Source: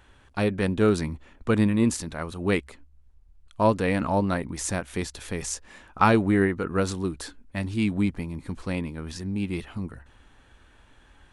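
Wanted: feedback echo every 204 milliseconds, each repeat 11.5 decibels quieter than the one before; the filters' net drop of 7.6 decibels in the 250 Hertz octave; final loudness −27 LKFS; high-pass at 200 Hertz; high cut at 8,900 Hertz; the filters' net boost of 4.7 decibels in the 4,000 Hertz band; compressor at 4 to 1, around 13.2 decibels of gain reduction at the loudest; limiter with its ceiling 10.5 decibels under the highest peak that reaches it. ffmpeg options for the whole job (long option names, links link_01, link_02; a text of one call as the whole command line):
ffmpeg -i in.wav -af "highpass=200,lowpass=8900,equalizer=frequency=250:width_type=o:gain=-7.5,equalizer=frequency=4000:width_type=o:gain=6,acompressor=threshold=-31dB:ratio=4,alimiter=limit=-23.5dB:level=0:latency=1,aecho=1:1:204|408|612:0.266|0.0718|0.0194,volume=10.5dB" out.wav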